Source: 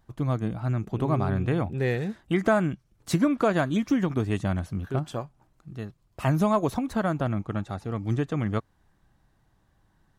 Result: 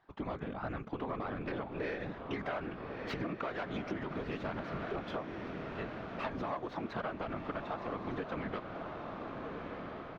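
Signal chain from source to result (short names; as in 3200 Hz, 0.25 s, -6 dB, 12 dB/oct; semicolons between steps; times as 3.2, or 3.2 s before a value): tracing distortion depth 0.24 ms; limiter -20 dBFS, peak gain reduction 10.5 dB; weighting filter A; feedback echo 0.659 s, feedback 42%, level -23.5 dB; whisperiser; air absorption 280 m; diffused feedback echo 1.361 s, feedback 53%, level -9 dB; compressor 6:1, threshold -38 dBFS, peak gain reduction 11.5 dB; gain +3.5 dB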